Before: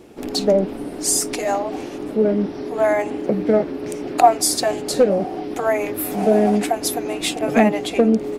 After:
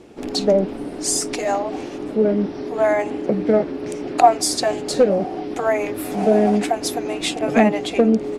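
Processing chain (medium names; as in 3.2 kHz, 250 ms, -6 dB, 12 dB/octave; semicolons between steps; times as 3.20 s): low-pass 8.5 kHz 12 dB/octave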